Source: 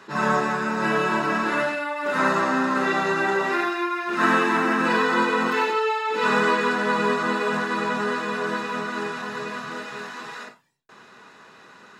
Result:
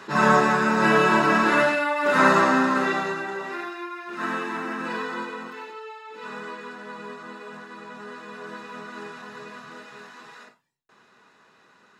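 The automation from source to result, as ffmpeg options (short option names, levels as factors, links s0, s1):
-af "volume=3.55,afade=t=out:st=2.38:d=0.87:silence=0.223872,afade=t=out:st=5.01:d=0.54:silence=0.446684,afade=t=in:st=7.86:d=1.16:silence=0.446684"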